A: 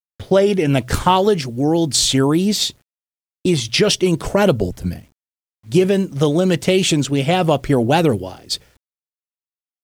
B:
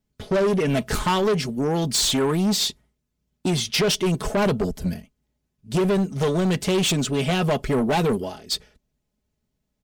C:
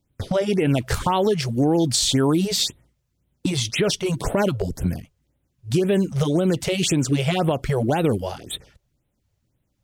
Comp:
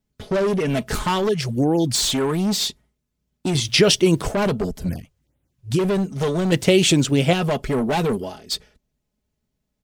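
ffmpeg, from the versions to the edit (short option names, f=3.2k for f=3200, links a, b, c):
-filter_complex "[2:a]asplit=2[a][b];[0:a]asplit=2[c][d];[1:a]asplit=5[e][f][g][h][i];[e]atrim=end=1.292[j];[a]atrim=start=1.288:end=1.952[k];[f]atrim=start=1.948:end=3.552[l];[c]atrim=start=3.548:end=4.322[m];[g]atrim=start=4.318:end=4.892[n];[b]atrim=start=4.888:end=5.792[o];[h]atrim=start=5.788:end=6.522[p];[d]atrim=start=6.518:end=7.332[q];[i]atrim=start=7.328[r];[j][k]acrossfade=d=0.004:c1=hsin:c2=hsin[s];[s][l]acrossfade=d=0.004:c1=hsin:c2=hsin[t];[t][m]acrossfade=d=0.004:c1=hsin:c2=hsin[u];[u][n]acrossfade=d=0.004:c1=hsin:c2=hsin[v];[v][o]acrossfade=d=0.004:c1=hsin:c2=hsin[w];[w][p]acrossfade=d=0.004:c1=hsin:c2=hsin[x];[x][q]acrossfade=d=0.004:c1=hsin:c2=hsin[y];[y][r]acrossfade=d=0.004:c1=hsin:c2=hsin"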